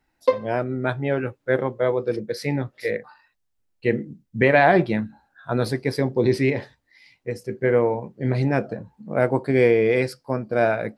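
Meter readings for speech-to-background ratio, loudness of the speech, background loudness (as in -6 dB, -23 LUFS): 2.5 dB, -22.5 LUFS, -25.0 LUFS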